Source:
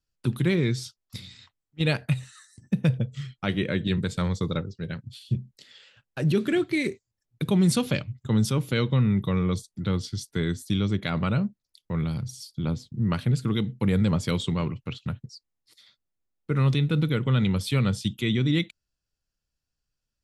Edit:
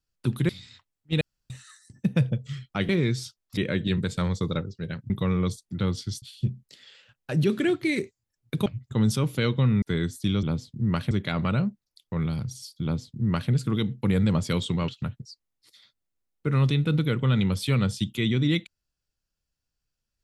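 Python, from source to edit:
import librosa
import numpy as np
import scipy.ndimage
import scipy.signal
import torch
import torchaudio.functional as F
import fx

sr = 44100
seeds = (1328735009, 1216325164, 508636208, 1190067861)

y = fx.edit(x, sr, fx.move(start_s=0.49, length_s=0.68, to_s=3.57),
    fx.room_tone_fill(start_s=1.89, length_s=0.29),
    fx.cut(start_s=7.54, length_s=0.46),
    fx.move(start_s=9.16, length_s=1.12, to_s=5.1),
    fx.duplicate(start_s=12.61, length_s=0.68, to_s=10.89),
    fx.cut(start_s=14.66, length_s=0.26), tone=tone)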